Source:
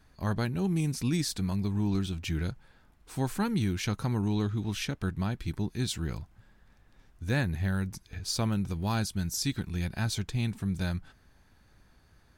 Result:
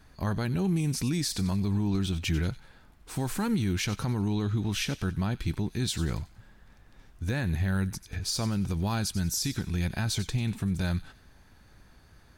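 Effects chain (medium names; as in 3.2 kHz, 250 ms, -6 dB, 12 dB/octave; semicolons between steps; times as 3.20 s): peak limiter -25 dBFS, peak gain reduction 8.5 dB; feedback echo behind a high-pass 93 ms, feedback 37%, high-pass 2.4 kHz, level -12.5 dB; trim +5 dB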